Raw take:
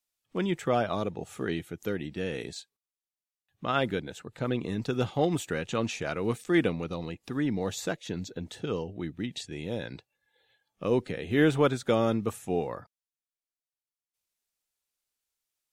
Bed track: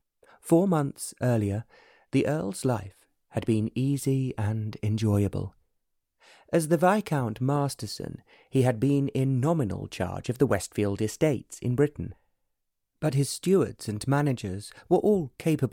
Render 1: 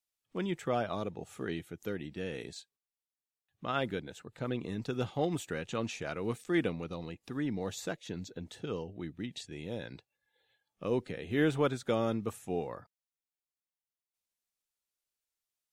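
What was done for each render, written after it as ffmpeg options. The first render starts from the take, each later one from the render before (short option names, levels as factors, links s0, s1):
-af "volume=0.531"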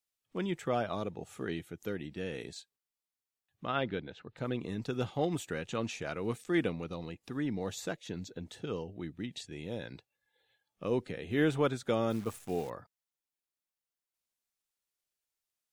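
-filter_complex "[0:a]asettb=1/sr,asplit=3[s0][s1][s2];[s0]atrim=end=3.674[s3];[s1]atrim=start=3.67:end=4.37,asetpts=PTS-STARTPTS,afade=t=in:d=0.004:c=qsin,afade=t=out:st=0.696:d=0.004:c=qsin,lowpass=f=4400:w=0.5412,lowpass=f=4400:w=1.3066[s4];[s2]atrim=start=4.366[s5];[s3][s4]acrossfade=d=0.004:c1=hsin:c2=qsin[s6];[s6][s5]acrossfade=d=0.004:c1=qsin:c2=hsin,asettb=1/sr,asplit=3[s7][s8][s9];[s7]atrim=end=12.104[s10];[s8]atrim=start=12.1:end=12.7,asetpts=PTS-STARTPTS,afade=t=in:d=0.004:c=qsin,afade=t=out:st=0.596:d=0.004:c=qsin,acrusher=bits=9:dc=4:mix=0:aa=0.000001[s11];[s9]atrim=start=12.696[s12];[s10][s11]acrossfade=d=0.004:c1=hsin:c2=qsin[s13];[s13][s12]acrossfade=d=0.004:c1=qsin:c2=hsin"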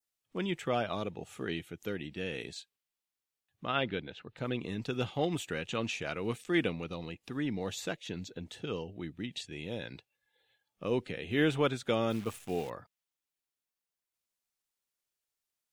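-af "adynamicequalizer=threshold=0.00141:dfrequency=2800:dqfactor=1.5:tfrequency=2800:tqfactor=1.5:attack=5:release=100:ratio=0.375:range=3.5:mode=boostabove:tftype=bell"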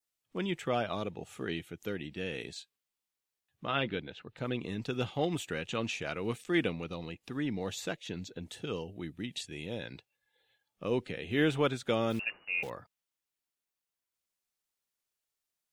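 -filter_complex "[0:a]asettb=1/sr,asplit=3[s0][s1][s2];[s0]atrim=end=2.594[s3];[s1]atrim=start=2.59:end=3.96,asetpts=PTS-STARTPTS,afade=t=in:d=0.004:c=qsin,afade=t=out:st=1.366:d=0.004:c=qsin,asplit=2[s4][s5];[s5]adelay=14,volume=0.335[s6];[s4][s6]amix=inputs=2:normalize=0,atrim=end_sample=60417[s7];[s2]atrim=start=3.956[s8];[s3][s7]acrossfade=d=0.004:c1=hsin:c2=qsin[s9];[s9][s8]acrossfade=d=0.004:c1=qsin:c2=hsin,asettb=1/sr,asplit=3[s10][s11][s12];[s10]atrim=end=8.424[s13];[s11]atrim=start=8.42:end=9.66,asetpts=PTS-STARTPTS,afade=t=in:d=0.004:c=qsin,afade=t=out:st=1.236:d=0.004:c=qsin,equalizer=f=11000:w=0.88:g=8[s14];[s12]atrim=start=9.656[s15];[s13][s14]acrossfade=d=0.004:c1=hsin:c2=qsin[s16];[s16][s15]acrossfade=d=0.004:c1=qsin:c2=hsin,asettb=1/sr,asplit=3[s17][s18][s19];[s17]atrim=end=12.194[s20];[s18]atrim=start=12.19:end=12.63,asetpts=PTS-STARTPTS,afade=t=in:d=0.004:c=qsin,afade=t=out:st=0.436:d=0.004:c=qsin,lowpass=f=2500:t=q:w=0.5098,lowpass=f=2500:t=q:w=0.6013,lowpass=f=2500:t=q:w=0.9,lowpass=f=2500:t=q:w=2.563,afreqshift=-2900[s21];[s19]atrim=start=12.626[s22];[s20][s21]acrossfade=d=0.004:c1=hsin:c2=qsin[s23];[s23][s22]acrossfade=d=0.004:c1=qsin:c2=hsin"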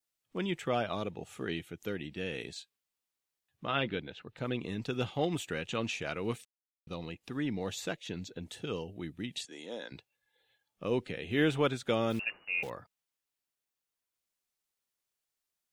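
-filter_complex "[0:a]asettb=1/sr,asplit=3[s0][s1][s2];[s0]atrim=end=9.454[s3];[s1]atrim=start=9.45:end=9.92,asetpts=PTS-STARTPTS,afade=t=in:d=0.004:c=qsin,afade=t=out:st=0.466:d=0.004:c=qsin,highpass=f=260:w=0.5412,highpass=f=260:w=1.3066,equalizer=f=370:t=q:w=4:g=-5,equalizer=f=1100:t=q:w=4:g=5,equalizer=f=2500:t=q:w=4:g=-10,equalizer=f=6600:t=q:w=4:g=8,lowpass=f=9900:w=0.5412,lowpass=f=9900:w=1.3066[s4];[s2]atrim=start=9.916[s5];[s3][s4]acrossfade=d=0.004:c1=hsin:c2=qsin[s6];[s6][s5]acrossfade=d=0.004:c1=qsin:c2=hsin,asplit=3[s7][s8][s9];[s7]atrim=end=6.45,asetpts=PTS-STARTPTS,afade=t=out:st=6.446:d=0.004:c=hsin[s10];[s8]atrim=start=6.45:end=6.87,asetpts=PTS-STARTPTS,volume=0[s11];[s9]atrim=start=6.87,asetpts=PTS-STARTPTS,afade=t=in:d=0.004:c=hsin[s12];[s10][s11][s12]concat=n=3:v=0:a=1"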